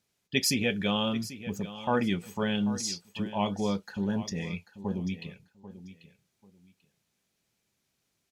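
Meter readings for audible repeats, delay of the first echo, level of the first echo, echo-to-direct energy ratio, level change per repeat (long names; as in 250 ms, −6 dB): 2, 790 ms, −14.5 dB, −14.5 dB, −13.0 dB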